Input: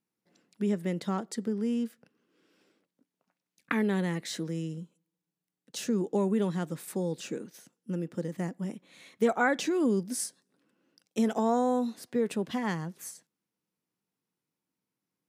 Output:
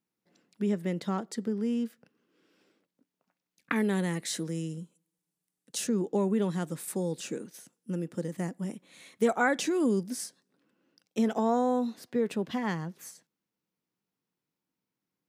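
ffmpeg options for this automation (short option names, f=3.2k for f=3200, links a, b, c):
-af "asetnsamples=n=441:p=0,asendcmd='3.76 equalizer g 9;5.87 equalizer g -2.5;6.49 equalizer g 6;10.1 equalizer g -5.5',equalizer=f=9.5k:t=o:w=0.95:g=-2.5"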